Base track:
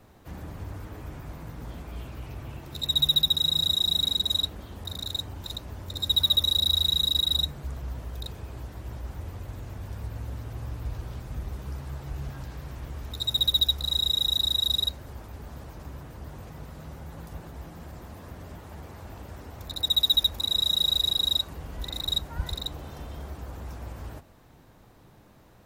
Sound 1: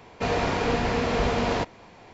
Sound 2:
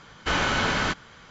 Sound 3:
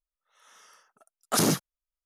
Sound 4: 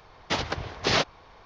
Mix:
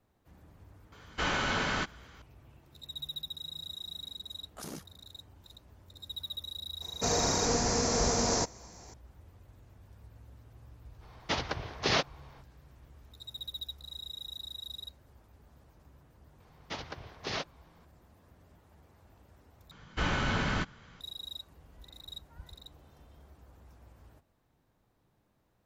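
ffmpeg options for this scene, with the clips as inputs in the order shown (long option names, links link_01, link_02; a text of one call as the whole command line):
ffmpeg -i bed.wav -i cue0.wav -i cue1.wav -i cue2.wav -i cue3.wav -filter_complex "[2:a]asplit=2[link_01][link_02];[4:a]asplit=2[link_03][link_04];[0:a]volume=-18dB[link_05];[3:a]tremolo=f=66:d=0.621[link_06];[1:a]highshelf=frequency=4300:width_type=q:width=3:gain=13[link_07];[link_02]bass=frequency=250:gain=8,treble=frequency=4000:gain=-3[link_08];[link_05]asplit=2[link_09][link_10];[link_09]atrim=end=19.714[link_11];[link_08]atrim=end=1.3,asetpts=PTS-STARTPTS,volume=-8dB[link_12];[link_10]atrim=start=21.006[link_13];[link_01]atrim=end=1.3,asetpts=PTS-STARTPTS,volume=-6.5dB,afade=type=in:duration=0.004:curve=hsin,afade=type=out:start_time=1.296:duration=0.004:curve=hsin,adelay=920[link_14];[link_06]atrim=end=2.05,asetpts=PTS-STARTPTS,volume=-17.5dB,afade=type=in:duration=0.004:curve=hsin,afade=type=out:start_time=2.046:duration=0.004:curve=hsin,adelay=143325S[link_15];[link_07]atrim=end=2.13,asetpts=PTS-STARTPTS,volume=-5dB,afade=type=in:duration=0.004:curve=hsin,afade=type=out:start_time=2.126:duration=0.004:curve=hsin,adelay=6810[link_16];[link_03]atrim=end=1.45,asetpts=PTS-STARTPTS,volume=-4.5dB,afade=type=in:duration=0.05,afade=type=out:start_time=1.4:duration=0.05,adelay=10990[link_17];[link_04]atrim=end=1.45,asetpts=PTS-STARTPTS,volume=-12.5dB,afade=type=in:duration=0.004:curve=hsin,afade=type=out:start_time=1.446:duration=0.004:curve=hsin,adelay=16400[link_18];[link_11][link_12]acrossfade=duration=0.004:curve1=hsin:curve2=hsin[link_19];[link_19][link_13]acrossfade=duration=0.004:curve1=hsin:curve2=hsin[link_20];[link_20][link_14][link_15][link_16][link_17][link_18]amix=inputs=6:normalize=0" out.wav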